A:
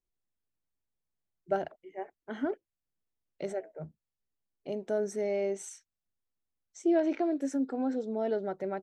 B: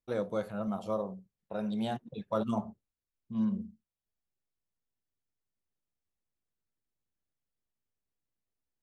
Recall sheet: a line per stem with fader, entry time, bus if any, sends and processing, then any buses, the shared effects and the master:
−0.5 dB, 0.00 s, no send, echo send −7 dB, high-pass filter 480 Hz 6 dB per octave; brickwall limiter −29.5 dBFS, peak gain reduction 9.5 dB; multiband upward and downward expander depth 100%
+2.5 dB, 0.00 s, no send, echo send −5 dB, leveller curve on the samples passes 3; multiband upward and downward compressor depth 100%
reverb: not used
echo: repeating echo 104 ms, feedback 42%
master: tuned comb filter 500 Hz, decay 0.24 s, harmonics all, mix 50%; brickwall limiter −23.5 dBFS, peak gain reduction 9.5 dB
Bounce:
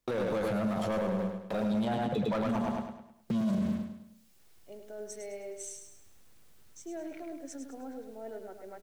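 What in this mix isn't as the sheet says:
stem A −0.5 dB → −7.0 dB
master: missing tuned comb filter 500 Hz, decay 0.24 s, harmonics all, mix 50%

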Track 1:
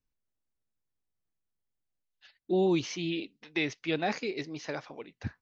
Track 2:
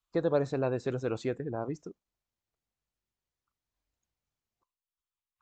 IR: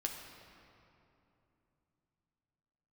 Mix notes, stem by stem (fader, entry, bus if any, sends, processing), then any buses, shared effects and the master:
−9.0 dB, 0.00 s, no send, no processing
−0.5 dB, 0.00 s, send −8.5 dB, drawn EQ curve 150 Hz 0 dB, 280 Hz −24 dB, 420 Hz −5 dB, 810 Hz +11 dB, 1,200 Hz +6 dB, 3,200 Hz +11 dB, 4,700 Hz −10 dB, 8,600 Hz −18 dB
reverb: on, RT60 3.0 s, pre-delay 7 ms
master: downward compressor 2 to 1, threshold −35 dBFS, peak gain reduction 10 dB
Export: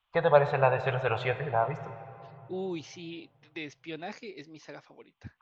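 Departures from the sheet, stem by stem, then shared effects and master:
stem 2: send −8.5 dB → −1 dB
master: missing downward compressor 2 to 1, threshold −35 dBFS, peak gain reduction 10 dB

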